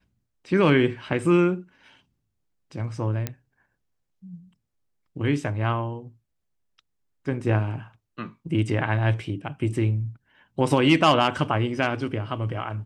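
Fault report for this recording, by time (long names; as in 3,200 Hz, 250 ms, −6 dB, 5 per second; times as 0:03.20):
0:03.27: click −12 dBFS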